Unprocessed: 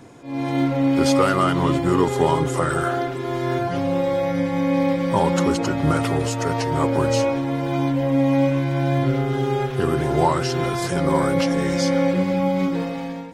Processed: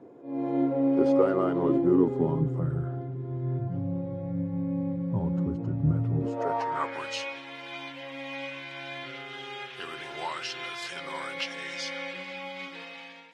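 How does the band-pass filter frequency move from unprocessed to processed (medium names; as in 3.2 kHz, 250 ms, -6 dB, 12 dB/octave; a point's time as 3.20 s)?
band-pass filter, Q 1.8
1.61 s 420 Hz
2.82 s 120 Hz
6.13 s 120 Hz
6.38 s 550 Hz
7.09 s 2.8 kHz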